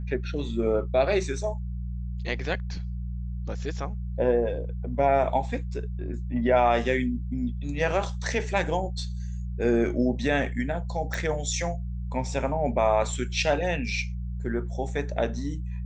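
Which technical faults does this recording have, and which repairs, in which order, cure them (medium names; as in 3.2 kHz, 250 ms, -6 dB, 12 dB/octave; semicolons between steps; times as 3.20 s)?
hum 60 Hz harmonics 3 -32 dBFS
11.14 s: pop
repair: de-click; de-hum 60 Hz, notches 3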